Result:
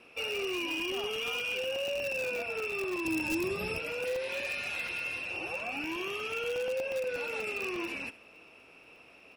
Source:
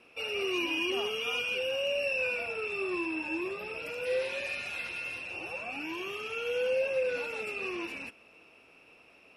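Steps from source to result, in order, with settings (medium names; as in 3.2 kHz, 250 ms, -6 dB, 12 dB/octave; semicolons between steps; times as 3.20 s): 1.93–2.42 s: peaking EQ 75 Hz -> 340 Hz +9.5 dB 2.7 oct; on a send: feedback delay 71 ms, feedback 18%, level -17.5 dB; on the sum: compression 6:1, threshold -33 dBFS, peak gain reduction 8 dB; in parallel at -9 dB: integer overflow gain 29 dB; 3.05–3.79 s: on the sum: tone controls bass +14 dB, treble +10 dB; crackling interface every 0.12 s, samples 64, zero, from 0.80 s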